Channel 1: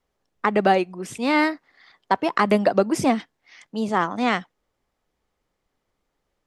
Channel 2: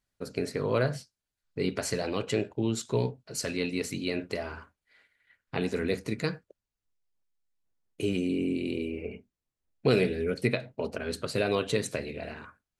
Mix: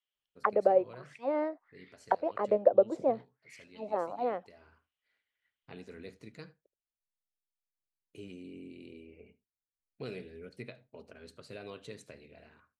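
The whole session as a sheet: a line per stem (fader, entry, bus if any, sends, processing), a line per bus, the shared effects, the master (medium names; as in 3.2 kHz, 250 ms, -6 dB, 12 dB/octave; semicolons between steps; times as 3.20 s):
+1.0 dB, 0.00 s, no send, no echo send, treble shelf 3.5 kHz -10.5 dB; auto-wah 530–3100 Hz, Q 5.2, down, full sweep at -19.5 dBFS
-18.0 dB, 0.15 s, no send, echo send -22.5 dB, treble shelf 7.5 kHz -12 dB; auto duck -7 dB, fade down 1.30 s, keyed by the first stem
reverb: none
echo: delay 76 ms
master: treble shelf 4.1 kHz +6 dB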